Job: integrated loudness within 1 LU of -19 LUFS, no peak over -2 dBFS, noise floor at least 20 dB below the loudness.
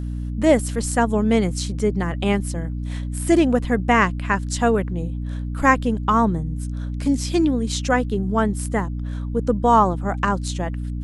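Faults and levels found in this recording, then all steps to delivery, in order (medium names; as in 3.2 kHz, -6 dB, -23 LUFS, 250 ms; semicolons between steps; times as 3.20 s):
hum 60 Hz; highest harmonic 300 Hz; hum level -24 dBFS; loudness -21.0 LUFS; peak level -1.5 dBFS; loudness target -19.0 LUFS
-> de-hum 60 Hz, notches 5; trim +2 dB; peak limiter -2 dBFS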